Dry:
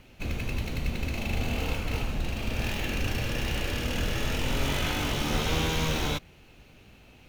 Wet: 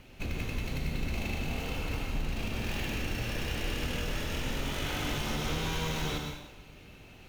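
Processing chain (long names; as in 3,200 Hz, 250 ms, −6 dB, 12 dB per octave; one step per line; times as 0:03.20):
downward compressor, threshold −31 dBFS, peak gain reduction 9.5 dB
dense smooth reverb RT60 0.88 s, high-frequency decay 0.95×, pre-delay 90 ms, DRR 2 dB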